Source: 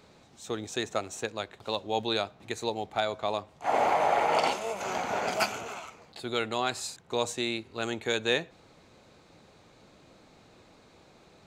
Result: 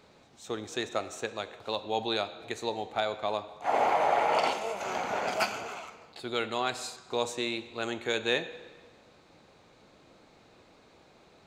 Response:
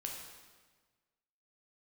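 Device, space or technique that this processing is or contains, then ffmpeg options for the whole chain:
filtered reverb send: -filter_complex "[0:a]asplit=2[a][b];[b]highpass=210,lowpass=5.9k[c];[1:a]atrim=start_sample=2205[d];[c][d]afir=irnorm=-1:irlink=0,volume=-5dB[e];[a][e]amix=inputs=2:normalize=0,volume=-3.5dB"

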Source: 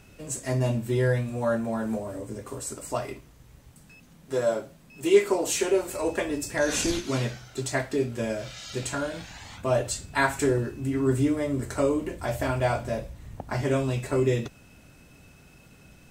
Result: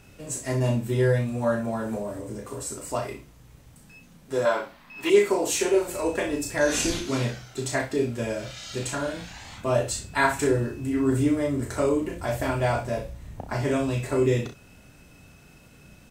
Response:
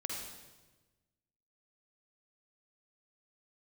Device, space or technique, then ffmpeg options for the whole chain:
slapback doubling: -filter_complex "[0:a]asplit=3[a][b][c];[b]adelay=34,volume=-5.5dB[d];[c]adelay=63,volume=-12dB[e];[a][d][e]amix=inputs=3:normalize=0,asettb=1/sr,asplit=3[f][g][h];[f]atrim=end=4.454[i];[g]atrim=start=4.45:end=5.1,asetpts=PTS-STARTPTS,afade=t=in:d=0.004:c=qsin,afade=t=out:st=0.646:d=0.004:c=qsin,equalizer=f=125:t=o:w=1:g=-11,equalizer=f=500:t=o:w=1:g=-5,equalizer=f=1k:t=o:w=1:g=11,equalizer=f=2k:t=o:w=1:g=8,equalizer=f=4k:t=o:w=1:g=6,equalizer=f=8k:t=o:w=1:g=-8[j];[h]atrim=start=5.096[k];[i][j]acrossfade=d=0.004:c1=hsin:c2=qsin[l];[l][k]acrossfade=d=0.004:c1=qsin:c2=hsin"

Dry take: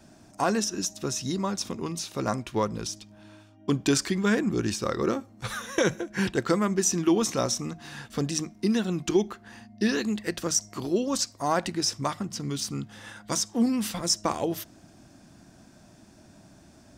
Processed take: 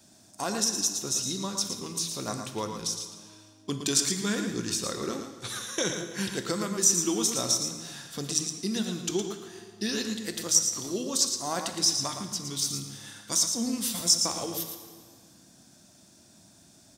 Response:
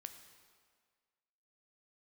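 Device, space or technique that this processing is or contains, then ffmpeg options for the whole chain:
PA in a hall: -filter_complex "[0:a]asettb=1/sr,asplit=3[a][b][c];[a]atrim=end=5.324[d];[b]atrim=start=5.32:end=5.94,asetpts=PTS-STARTPTS,afade=t=in:d=0.004:c=qsin,afade=t=out:st=0.616:d=0.004:c=qsin,lowpass=11k[e];[c]atrim=start=5.936[f];[d][e]acrossfade=d=0.004:c1=hsin:c2=qsin[g];[g][f]acrossfade=d=0.004:c1=qsin:c2=hsin,highpass=f=140:p=1,equalizer=f=3.6k:t=o:w=0.41:g=5,aecho=1:1:114:0.422[h];[1:a]atrim=start_sample=2205[i];[h][i]afir=irnorm=-1:irlink=0,bass=f=250:g=3,treble=f=4k:g=13,volume=-1.5dB"

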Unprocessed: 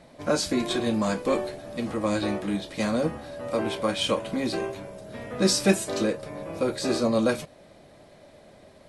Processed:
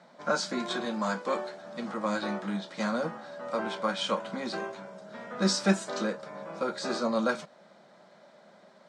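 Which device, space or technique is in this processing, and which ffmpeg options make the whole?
television speaker: -filter_complex "[0:a]highpass=f=190:w=0.5412,highpass=f=190:w=1.3066,equalizer=f=190:t=q:w=4:g=6,equalizer=f=290:t=q:w=4:g=-10,equalizer=f=430:t=q:w=4:g=-4,equalizer=f=920:t=q:w=4:g=5,equalizer=f=1.4k:t=q:w=4:g=9,equalizer=f=2.6k:t=q:w=4:g=-5,lowpass=f=7.3k:w=0.5412,lowpass=f=7.3k:w=1.3066,asettb=1/sr,asplit=3[a][b][c];[a]atrim=end=0.854[d];[b]atrim=start=0.85:end=1.61,asetpts=PTS-STARTPTS,afade=t=in:d=0.004:c=qsin,afade=t=out:st=0.756:d=0.004:c=qsin,highpass=f=230:p=1[e];[c]atrim=start=1.606[f];[d][e]acrossfade=d=0.004:c1=hsin:c2=qsin[g];[g][f]acrossfade=d=0.004:c1=qsin:c2=hsin,volume=-4dB"

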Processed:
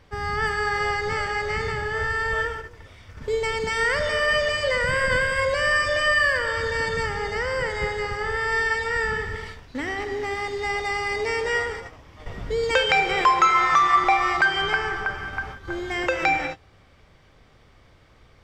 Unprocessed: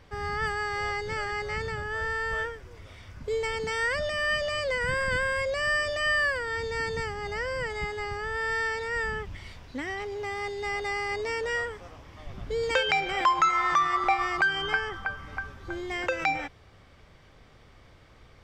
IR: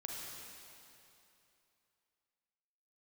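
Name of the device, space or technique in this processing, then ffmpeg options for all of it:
keyed gated reverb: -filter_complex "[0:a]asplit=3[a][b][c];[1:a]atrim=start_sample=2205[d];[b][d]afir=irnorm=-1:irlink=0[e];[c]apad=whole_len=812942[f];[e][f]sidechaingate=range=-33dB:threshold=-42dB:ratio=16:detection=peak,volume=1.5dB[g];[a][g]amix=inputs=2:normalize=0"

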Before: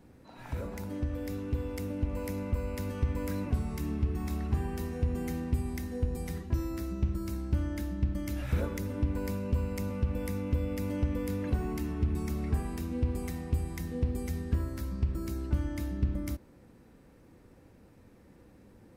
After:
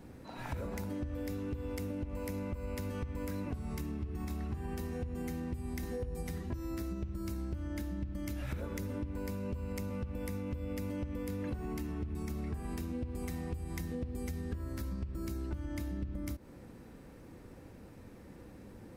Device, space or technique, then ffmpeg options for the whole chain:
serial compression, peaks first: -filter_complex "[0:a]asettb=1/sr,asplit=3[a][b][c];[a]atrim=end=5.814[d];[b]atrim=start=5.81:end=6.23,asetpts=PTS-STARTPTS,afade=t=in:d=0.004:c=qsin,afade=t=out:st=0.416:d=0.004:c=qsin,asplit=2[e][f];[f]adelay=18,volume=-4.5dB[g];[e][g]amix=inputs=2:normalize=0,atrim=end_sample=18522[h];[c]atrim=start=6.226[i];[d][h]acrossfade=d=0.004:c1=hsin:c2=qsin[j];[j][i]acrossfade=d=0.004:c1=qsin:c2=hsin,acompressor=threshold=-34dB:ratio=6,acompressor=threshold=-42dB:ratio=2.5,volume=5dB"

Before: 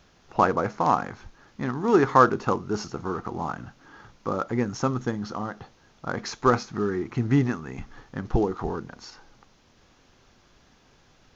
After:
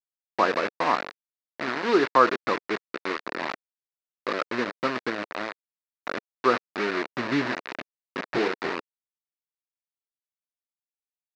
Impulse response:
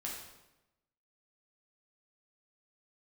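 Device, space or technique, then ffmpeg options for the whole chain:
hand-held game console: -filter_complex "[0:a]asettb=1/sr,asplit=3[a][b][c];[a]atrim=end=7.434[d];[b]atrim=start=7.43:end=8.7,asetpts=PTS-STARTPTS,afade=t=in:d=0.004:c=qsin,afade=t=out:st=1.266:d=0.004:c=qsin,asplit=2[e][f];[f]adelay=23,volume=-3.5dB[g];[e][g]amix=inputs=2:normalize=0,atrim=end_sample=56007[h];[c]atrim=start=8.696[i];[d][h]acrossfade=d=0.004:c1=hsin:c2=qsin[j];[j][i]acrossfade=d=0.004:c1=qsin:c2=hsin,tiltshelf=f=1.1k:g=5,acrusher=bits=3:mix=0:aa=0.000001,highpass=420,equalizer=f=450:t=q:w=4:g=-3,equalizer=f=800:t=q:w=4:g=-8,equalizer=f=1.8k:t=q:w=4:g=3,equalizer=f=3.2k:t=q:w=4:g=-8,lowpass=f=4.2k:w=0.5412,lowpass=f=4.2k:w=1.3066"

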